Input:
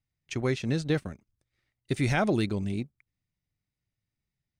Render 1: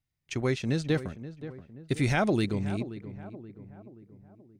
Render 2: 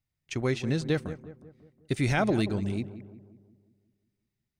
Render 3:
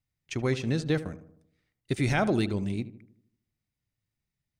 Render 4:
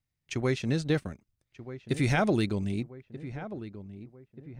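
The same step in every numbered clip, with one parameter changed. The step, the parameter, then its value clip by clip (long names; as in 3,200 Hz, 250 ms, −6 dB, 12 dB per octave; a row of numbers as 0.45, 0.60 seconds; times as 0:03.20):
feedback echo with a low-pass in the loop, delay time: 528, 181, 77, 1,233 milliseconds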